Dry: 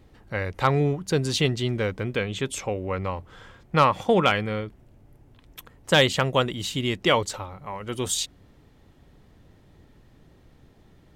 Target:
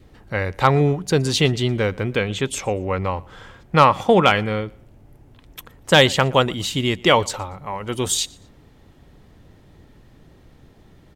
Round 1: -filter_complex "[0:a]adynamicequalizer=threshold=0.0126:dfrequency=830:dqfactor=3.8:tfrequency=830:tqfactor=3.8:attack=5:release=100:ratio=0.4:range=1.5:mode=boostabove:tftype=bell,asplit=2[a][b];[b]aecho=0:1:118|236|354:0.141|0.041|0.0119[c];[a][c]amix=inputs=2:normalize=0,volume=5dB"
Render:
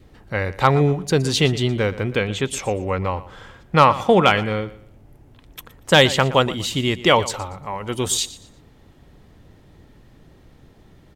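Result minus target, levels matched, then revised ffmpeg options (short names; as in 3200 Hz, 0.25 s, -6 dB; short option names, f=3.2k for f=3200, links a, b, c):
echo-to-direct +8 dB
-filter_complex "[0:a]adynamicequalizer=threshold=0.0126:dfrequency=830:dqfactor=3.8:tfrequency=830:tqfactor=3.8:attack=5:release=100:ratio=0.4:range=1.5:mode=boostabove:tftype=bell,asplit=2[a][b];[b]aecho=0:1:118|236:0.0562|0.0163[c];[a][c]amix=inputs=2:normalize=0,volume=5dB"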